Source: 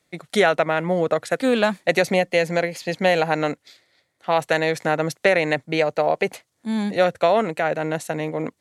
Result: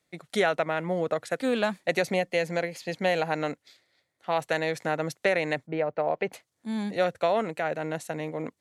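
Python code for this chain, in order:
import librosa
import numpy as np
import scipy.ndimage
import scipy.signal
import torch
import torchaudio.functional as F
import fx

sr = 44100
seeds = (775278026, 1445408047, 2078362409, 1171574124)

y = fx.lowpass(x, sr, hz=fx.line((5.66, 1300.0), (6.31, 3400.0)), slope=12, at=(5.66, 6.31), fade=0.02)
y = y * librosa.db_to_amplitude(-7.0)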